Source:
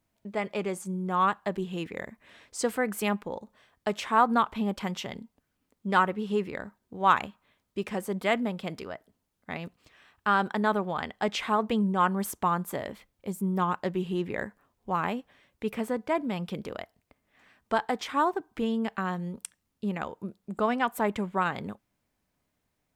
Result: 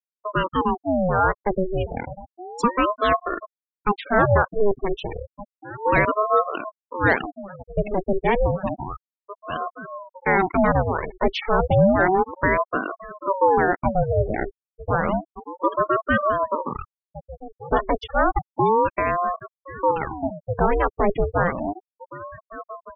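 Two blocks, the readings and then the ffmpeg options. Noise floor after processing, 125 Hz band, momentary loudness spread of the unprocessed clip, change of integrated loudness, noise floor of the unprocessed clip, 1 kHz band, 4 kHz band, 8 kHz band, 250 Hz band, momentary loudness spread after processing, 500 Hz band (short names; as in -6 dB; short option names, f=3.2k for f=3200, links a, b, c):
under -85 dBFS, +9.5 dB, 15 LU, +7.0 dB, -79 dBFS, +6.5 dB, +1.0 dB, under -10 dB, +4.0 dB, 18 LU, +10.0 dB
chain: -filter_complex "[0:a]highshelf=f=3k:g=4.5,asplit=2[a][b];[b]volume=23dB,asoftclip=hard,volume=-23dB,volume=-3dB[c];[a][c]amix=inputs=2:normalize=0,acontrast=82,tiltshelf=f=640:g=4,acrossover=split=8200[d][e];[e]acompressor=threshold=-49dB:ratio=4:attack=1:release=60[f];[d][f]amix=inputs=2:normalize=0,asplit=2[g][h];[h]adelay=1516,volume=-15dB,highshelf=f=4k:g=-34.1[i];[g][i]amix=inputs=2:normalize=0,afftfilt=real='re*gte(hypot(re,im),0.158)':imag='im*gte(hypot(re,im),0.158)':win_size=1024:overlap=0.75,aeval=exprs='val(0)*sin(2*PI*540*n/s+540*0.65/0.31*sin(2*PI*0.31*n/s))':c=same,volume=-1dB"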